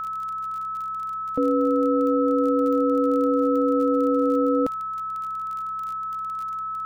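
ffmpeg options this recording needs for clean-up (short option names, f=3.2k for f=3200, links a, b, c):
-af "adeclick=t=4,bandreject=f=64.5:t=h:w=4,bandreject=f=129:t=h:w=4,bandreject=f=193.5:t=h:w=4,bandreject=f=1.3k:w=30,agate=range=-21dB:threshold=-22dB"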